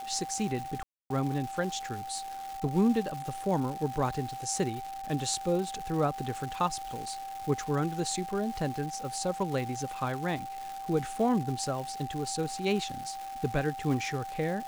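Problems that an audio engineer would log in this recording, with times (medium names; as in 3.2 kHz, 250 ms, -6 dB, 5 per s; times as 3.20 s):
crackle 540 per s -37 dBFS
whine 780 Hz -37 dBFS
0.83–1.10 s: dropout 272 ms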